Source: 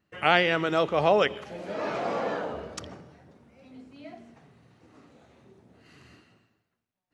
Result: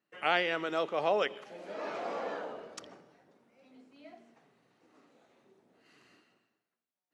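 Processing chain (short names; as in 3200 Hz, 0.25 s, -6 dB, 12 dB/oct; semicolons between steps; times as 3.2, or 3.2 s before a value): HPF 270 Hz 12 dB/oct; gain -7 dB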